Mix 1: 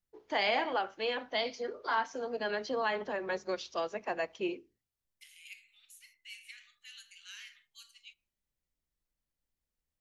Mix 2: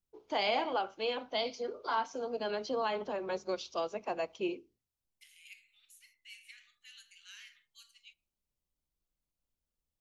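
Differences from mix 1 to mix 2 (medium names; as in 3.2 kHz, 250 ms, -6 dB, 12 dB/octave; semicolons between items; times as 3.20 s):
first voice: add peaking EQ 1.8 kHz -12 dB 0.39 oct; second voice -3.5 dB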